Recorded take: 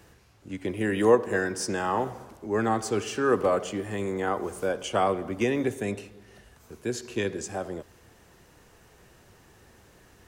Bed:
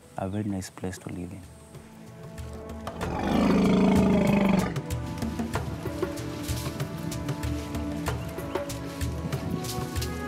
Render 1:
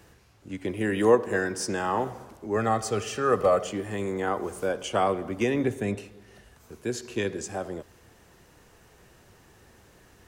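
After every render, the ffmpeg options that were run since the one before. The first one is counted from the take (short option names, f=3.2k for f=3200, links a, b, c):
-filter_complex "[0:a]asettb=1/sr,asplit=3[a][b][c];[a]atrim=end=2.564[d];[b]atrim=start=2.56:end=3.67,asetpts=PTS-STARTPTS,afade=t=in:d=0.004:c=qsin,afade=t=out:st=1.106:d=0.004:c=qsin,aecho=1:1:1.6:0.53,atrim=end_sample=48951[e];[c]atrim=start=3.666[f];[d][e]acrossfade=d=0.004:c1=hsin:c2=qsin[g];[g][f]acrossfade=d=0.004:c1=qsin:c2=hsin,asettb=1/sr,asplit=3[h][i][j];[h]atrim=end=5.544[k];[i]atrim=start=5.54:end=5.98,asetpts=PTS-STARTPTS,afade=t=in:d=0.004:c=qsin,afade=t=out:st=0.436:d=0.004:c=qsin,bass=f=250:g=4,treble=f=4k:g=-4[l];[j]atrim=start=5.976[m];[k][l]acrossfade=d=0.004:c1=hsin:c2=qsin[n];[n][m]acrossfade=d=0.004:c1=qsin:c2=hsin"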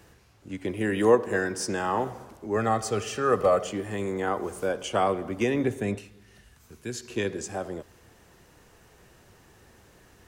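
-filter_complex "[0:a]asettb=1/sr,asplit=3[a][b][c];[a]atrim=end=5.984[d];[b]atrim=start=5.98:end=7.1,asetpts=PTS-STARTPTS,afade=t=in:d=0.004:c=qsin,afade=t=out:st=1.116:d=0.004:c=qsin,equalizer=f=560:t=o:w=2.1:g=-8[e];[c]atrim=start=7.096[f];[d][e]acrossfade=d=0.004:c1=hsin:c2=qsin[g];[g][f]acrossfade=d=0.004:c1=qsin:c2=hsin"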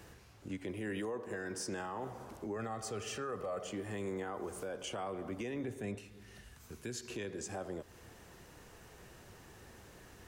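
-af "acompressor=threshold=-42dB:ratio=2,alimiter=level_in=7.5dB:limit=-24dB:level=0:latency=1:release=16,volume=-7.5dB"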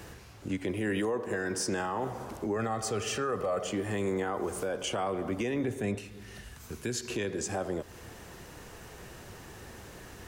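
-af "volume=8.5dB"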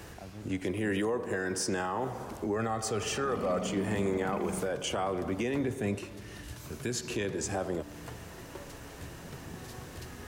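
-filter_complex "[1:a]volume=-16dB[a];[0:a][a]amix=inputs=2:normalize=0"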